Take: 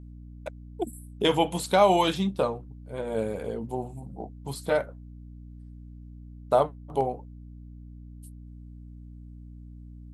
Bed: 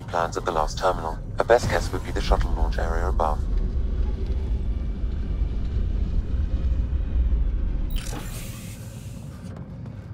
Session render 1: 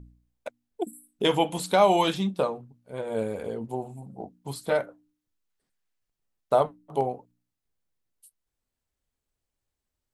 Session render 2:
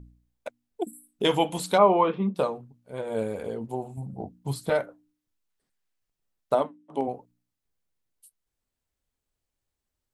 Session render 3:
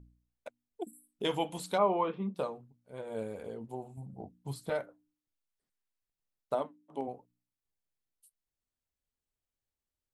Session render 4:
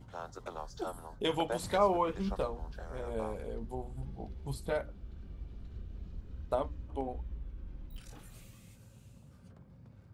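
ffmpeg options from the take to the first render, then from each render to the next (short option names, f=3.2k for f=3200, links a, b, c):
-af "bandreject=f=60:t=h:w=4,bandreject=f=120:t=h:w=4,bandreject=f=180:t=h:w=4,bandreject=f=240:t=h:w=4,bandreject=f=300:t=h:w=4"
-filter_complex "[0:a]asplit=3[a][b][c];[a]afade=t=out:st=1.77:d=0.02[d];[b]highpass=200,equalizer=f=220:t=q:w=4:g=8,equalizer=f=310:t=q:w=4:g=-4,equalizer=f=450:t=q:w=4:g=10,equalizer=f=750:t=q:w=4:g=-5,equalizer=f=1.1k:t=q:w=4:g=9,equalizer=f=1.7k:t=q:w=4:g=-9,lowpass=f=2.1k:w=0.5412,lowpass=f=2.1k:w=1.3066,afade=t=in:st=1.77:d=0.02,afade=t=out:st=2.34:d=0.02[e];[c]afade=t=in:st=2.34:d=0.02[f];[d][e][f]amix=inputs=3:normalize=0,asettb=1/sr,asplit=3[g][h][i];[g]atrim=end=3.974[j];[h]atrim=start=3.97:end=4.7,asetpts=PTS-STARTPTS,afade=t=in:d=0.004:c=qsin,afade=t=out:st=0.726:d=0.004:c=qsin,equalizer=f=80:t=o:w=2.3:g=11[k];[i]atrim=start=4.696[l];[j][k]acrossfade=d=0.004:c1=hsin:c2=qsin[m];[m][l]acrossfade=d=0.004:c1=qsin:c2=hsin,asplit=3[n][o][p];[n]afade=t=out:st=6.54:d=0.02[q];[o]highpass=250,equalizer=f=260:t=q:w=4:g=10,equalizer=f=450:t=q:w=4:g=-5,equalizer=f=730:t=q:w=4:g=-6,equalizer=f=1.3k:t=q:w=4:g=-5,equalizer=f=4.4k:t=q:w=4:g=-9,equalizer=f=6.8k:t=q:w=4:g=-6,lowpass=f=8.6k:w=0.5412,lowpass=f=8.6k:w=1.3066,afade=t=in:st=6.54:d=0.02,afade=t=out:st=7.07:d=0.02[r];[p]afade=t=in:st=7.07:d=0.02[s];[q][r][s]amix=inputs=3:normalize=0"
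-af "volume=-9dB"
-filter_complex "[1:a]volume=-19.5dB[a];[0:a][a]amix=inputs=2:normalize=0"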